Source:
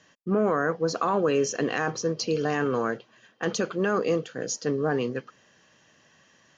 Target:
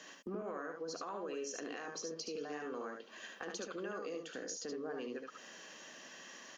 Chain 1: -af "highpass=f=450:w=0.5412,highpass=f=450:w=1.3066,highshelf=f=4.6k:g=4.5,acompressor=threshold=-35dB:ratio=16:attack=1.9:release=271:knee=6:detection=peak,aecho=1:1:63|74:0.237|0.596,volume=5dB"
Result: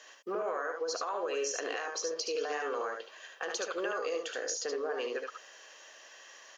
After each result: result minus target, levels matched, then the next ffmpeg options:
250 Hz band -9.5 dB; compressor: peak gain reduction -9.5 dB
-af "highpass=f=220:w=0.5412,highpass=f=220:w=1.3066,highshelf=f=4.6k:g=4.5,acompressor=threshold=-35dB:ratio=16:attack=1.9:release=271:knee=6:detection=peak,aecho=1:1:63|74:0.237|0.596,volume=5dB"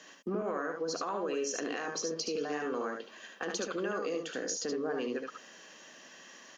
compressor: peak gain reduction -8 dB
-af "highpass=f=220:w=0.5412,highpass=f=220:w=1.3066,highshelf=f=4.6k:g=4.5,acompressor=threshold=-43.5dB:ratio=16:attack=1.9:release=271:knee=6:detection=peak,aecho=1:1:63|74:0.237|0.596,volume=5dB"

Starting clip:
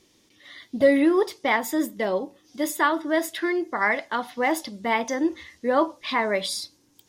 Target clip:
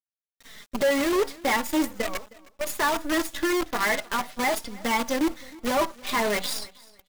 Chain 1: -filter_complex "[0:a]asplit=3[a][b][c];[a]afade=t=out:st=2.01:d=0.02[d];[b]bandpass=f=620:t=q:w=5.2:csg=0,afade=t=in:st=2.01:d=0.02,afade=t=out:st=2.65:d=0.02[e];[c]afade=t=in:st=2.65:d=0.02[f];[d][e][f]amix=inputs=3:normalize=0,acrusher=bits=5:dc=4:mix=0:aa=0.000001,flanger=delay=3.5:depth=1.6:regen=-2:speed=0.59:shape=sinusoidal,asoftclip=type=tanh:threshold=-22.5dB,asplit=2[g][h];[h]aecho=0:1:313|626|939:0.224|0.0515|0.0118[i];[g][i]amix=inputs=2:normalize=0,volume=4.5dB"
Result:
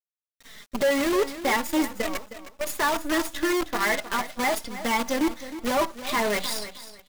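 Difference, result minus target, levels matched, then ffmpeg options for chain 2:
echo-to-direct +9 dB
-filter_complex "[0:a]asplit=3[a][b][c];[a]afade=t=out:st=2.01:d=0.02[d];[b]bandpass=f=620:t=q:w=5.2:csg=0,afade=t=in:st=2.01:d=0.02,afade=t=out:st=2.65:d=0.02[e];[c]afade=t=in:st=2.65:d=0.02[f];[d][e][f]amix=inputs=3:normalize=0,acrusher=bits=5:dc=4:mix=0:aa=0.000001,flanger=delay=3.5:depth=1.6:regen=-2:speed=0.59:shape=sinusoidal,asoftclip=type=tanh:threshold=-22.5dB,asplit=2[g][h];[h]aecho=0:1:313|626:0.0794|0.0183[i];[g][i]amix=inputs=2:normalize=0,volume=4.5dB"

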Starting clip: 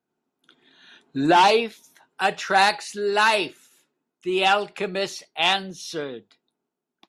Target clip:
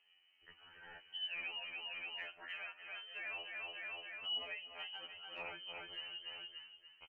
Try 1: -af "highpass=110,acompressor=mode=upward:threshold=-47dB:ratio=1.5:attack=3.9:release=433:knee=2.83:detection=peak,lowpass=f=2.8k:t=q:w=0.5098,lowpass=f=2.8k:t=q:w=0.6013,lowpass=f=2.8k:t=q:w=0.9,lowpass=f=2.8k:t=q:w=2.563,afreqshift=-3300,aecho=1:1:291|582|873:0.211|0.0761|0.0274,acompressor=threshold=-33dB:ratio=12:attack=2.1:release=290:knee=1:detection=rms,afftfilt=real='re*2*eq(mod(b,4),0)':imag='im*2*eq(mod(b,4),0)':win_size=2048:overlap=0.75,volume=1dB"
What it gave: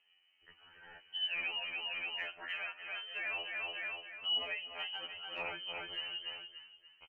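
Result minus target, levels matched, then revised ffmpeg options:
compressor: peak gain reduction -6 dB
-af "highpass=110,acompressor=mode=upward:threshold=-47dB:ratio=1.5:attack=3.9:release=433:knee=2.83:detection=peak,lowpass=f=2.8k:t=q:w=0.5098,lowpass=f=2.8k:t=q:w=0.6013,lowpass=f=2.8k:t=q:w=0.9,lowpass=f=2.8k:t=q:w=2.563,afreqshift=-3300,aecho=1:1:291|582|873:0.211|0.0761|0.0274,acompressor=threshold=-39.5dB:ratio=12:attack=2.1:release=290:knee=1:detection=rms,afftfilt=real='re*2*eq(mod(b,4),0)':imag='im*2*eq(mod(b,4),0)':win_size=2048:overlap=0.75,volume=1dB"

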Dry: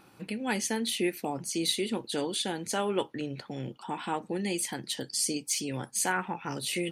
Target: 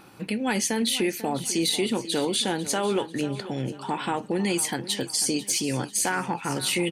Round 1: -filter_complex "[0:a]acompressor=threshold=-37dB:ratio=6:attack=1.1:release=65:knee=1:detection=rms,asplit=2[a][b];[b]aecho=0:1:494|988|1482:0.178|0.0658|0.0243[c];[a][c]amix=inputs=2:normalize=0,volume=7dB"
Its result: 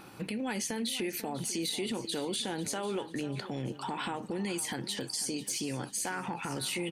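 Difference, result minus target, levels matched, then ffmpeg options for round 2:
compressor: peak gain reduction +9.5 dB
-filter_complex "[0:a]acompressor=threshold=-25.5dB:ratio=6:attack=1.1:release=65:knee=1:detection=rms,asplit=2[a][b];[b]aecho=0:1:494|988|1482:0.178|0.0658|0.0243[c];[a][c]amix=inputs=2:normalize=0,volume=7dB"

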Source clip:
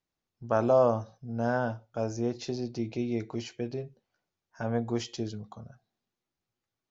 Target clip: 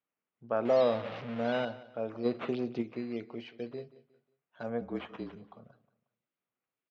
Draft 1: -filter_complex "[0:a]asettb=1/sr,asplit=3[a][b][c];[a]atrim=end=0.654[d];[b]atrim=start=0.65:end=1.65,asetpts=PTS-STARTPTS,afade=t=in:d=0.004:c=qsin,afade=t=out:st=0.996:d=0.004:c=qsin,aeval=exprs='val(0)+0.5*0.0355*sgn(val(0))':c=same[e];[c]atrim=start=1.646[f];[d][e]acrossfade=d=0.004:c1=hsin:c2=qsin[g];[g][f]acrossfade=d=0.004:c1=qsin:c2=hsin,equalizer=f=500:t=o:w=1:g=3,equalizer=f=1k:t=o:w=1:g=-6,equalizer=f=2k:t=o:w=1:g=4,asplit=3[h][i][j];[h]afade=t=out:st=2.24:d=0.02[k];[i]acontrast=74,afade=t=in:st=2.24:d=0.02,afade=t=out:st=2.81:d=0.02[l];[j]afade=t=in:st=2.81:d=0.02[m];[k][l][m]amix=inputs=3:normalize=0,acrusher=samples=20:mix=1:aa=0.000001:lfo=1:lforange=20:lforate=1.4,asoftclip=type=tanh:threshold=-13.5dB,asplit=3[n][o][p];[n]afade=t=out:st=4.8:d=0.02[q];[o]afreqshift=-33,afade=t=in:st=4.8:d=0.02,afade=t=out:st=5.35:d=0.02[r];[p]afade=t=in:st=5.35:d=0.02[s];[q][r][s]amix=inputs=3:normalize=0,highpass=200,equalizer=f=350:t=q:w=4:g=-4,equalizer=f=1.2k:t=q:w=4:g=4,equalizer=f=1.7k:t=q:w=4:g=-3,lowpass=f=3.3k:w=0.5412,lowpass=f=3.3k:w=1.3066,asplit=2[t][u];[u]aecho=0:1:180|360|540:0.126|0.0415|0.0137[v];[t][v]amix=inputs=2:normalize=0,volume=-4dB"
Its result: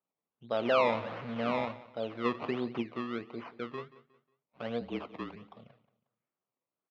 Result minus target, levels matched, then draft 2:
soft clip: distortion +14 dB; decimation with a swept rate: distortion +10 dB
-filter_complex "[0:a]asettb=1/sr,asplit=3[a][b][c];[a]atrim=end=0.654[d];[b]atrim=start=0.65:end=1.65,asetpts=PTS-STARTPTS,afade=t=in:d=0.004:c=qsin,afade=t=out:st=0.996:d=0.004:c=qsin,aeval=exprs='val(0)+0.5*0.0355*sgn(val(0))':c=same[e];[c]atrim=start=1.646[f];[d][e]acrossfade=d=0.004:c1=hsin:c2=qsin[g];[g][f]acrossfade=d=0.004:c1=qsin:c2=hsin,equalizer=f=500:t=o:w=1:g=3,equalizer=f=1k:t=o:w=1:g=-6,equalizer=f=2k:t=o:w=1:g=4,asplit=3[h][i][j];[h]afade=t=out:st=2.24:d=0.02[k];[i]acontrast=74,afade=t=in:st=2.24:d=0.02,afade=t=out:st=2.81:d=0.02[l];[j]afade=t=in:st=2.81:d=0.02[m];[k][l][m]amix=inputs=3:normalize=0,acrusher=samples=7:mix=1:aa=0.000001:lfo=1:lforange=7:lforate=1.4,asoftclip=type=tanh:threshold=-5.5dB,asplit=3[n][o][p];[n]afade=t=out:st=4.8:d=0.02[q];[o]afreqshift=-33,afade=t=in:st=4.8:d=0.02,afade=t=out:st=5.35:d=0.02[r];[p]afade=t=in:st=5.35:d=0.02[s];[q][r][s]amix=inputs=3:normalize=0,highpass=200,equalizer=f=350:t=q:w=4:g=-4,equalizer=f=1.2k:t=q:w=4:g=4,equalizer=f=1.7k:t=q:w=4:g=-3,lowpass=f=3.3k:w=0.5412,lowpass=f=3.3k:w=1.3066,asplit=2[t][u];[u]aecho=0:1:180|360|540:0.126|0.0415|0.0137[v];[t][v]amix=inputs=2:normalize=0,volume=-4dB"

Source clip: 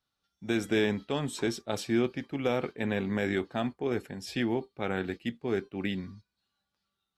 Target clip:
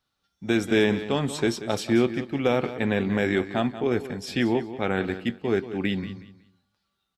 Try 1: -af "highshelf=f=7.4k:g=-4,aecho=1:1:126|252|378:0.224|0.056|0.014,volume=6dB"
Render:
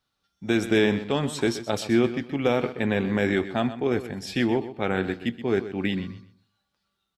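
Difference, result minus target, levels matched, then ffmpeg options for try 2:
echo 58 ms early
-af "highshelf=f=7.4k:g=-4,aecho=1:1:184|368|552:0.224|0.056|0.014,volume=6dB"

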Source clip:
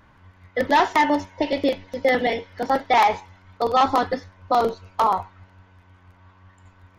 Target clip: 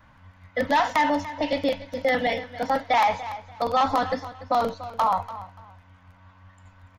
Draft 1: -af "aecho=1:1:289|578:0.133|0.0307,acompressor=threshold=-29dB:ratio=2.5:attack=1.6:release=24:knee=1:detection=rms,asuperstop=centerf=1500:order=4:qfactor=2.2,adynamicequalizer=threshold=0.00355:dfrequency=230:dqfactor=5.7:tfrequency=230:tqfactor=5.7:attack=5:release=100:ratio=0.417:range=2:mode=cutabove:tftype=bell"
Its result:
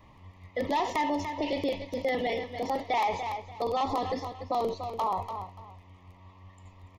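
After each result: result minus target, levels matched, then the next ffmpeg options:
compressor: peak gain reduction +7 dB; 2000 Hz band -3.0 dB
-af "aecho=1:1:289|578:0.133|0.0307,acompressor=threshold=-17.5dB:ratio=2.5:attack=1.6:release=24:knee=1:detection=rms,asuperstop=centerf=1500:order=4:qfactor=2.2,adynamicequalizer=threshold=0.00355:dfrequency=230:dqfactor=5.7:tfrequency=230:tqfactor=5.7:attack=5:release=100:ratio=0.417:range=2:mode=cutabove:tftype=bell"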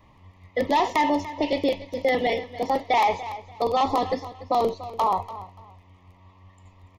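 2000 Hz band -3.0 dB
-af "aecho=1:1:289|578:0.133|0.0307,acompressor=threshold=-17.5dB:ratio=2.5:attack=1.6:release=24:knee=1:detection=rms,asuperstop=centerf=380:order=4:qfactor=2.2,adynamicequalizer=threshold=0.00355:dfrequency=230:dqfactor=5.7:tfrequency=230:tqfactor=5.7:attack=5:release=100:ratio=0.417:range=2:mode=cutabove:tftype=bell"

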